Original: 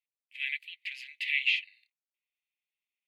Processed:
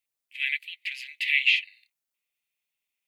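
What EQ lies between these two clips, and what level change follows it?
dynamic equaliser 1,400 Hz, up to +4 dB, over −43 dBFS, Q 1.9
high-shelf EQ 7,000 Hz +6.5 dB
+4.5 dB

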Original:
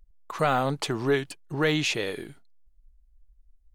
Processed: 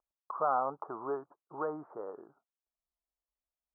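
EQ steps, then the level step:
resonant band-pass 980 Hz, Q 0.84
Butterworth low-pass 1,300 Hz 72 dB per octave
spectral tilt +3 dB per octave
−2.0 dB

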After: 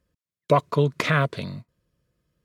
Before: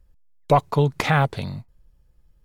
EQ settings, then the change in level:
high-pass filter 140 Hz 12 dB per octave
Butterworth band-reject 810 Hz, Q 3.4
high-shelf EQ 11,000 Hz −8.5 dB
0.0 dB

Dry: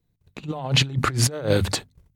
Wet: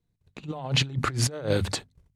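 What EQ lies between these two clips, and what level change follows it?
low-pass filter 11,000 Hz 12 dB per octave
−4.5 dB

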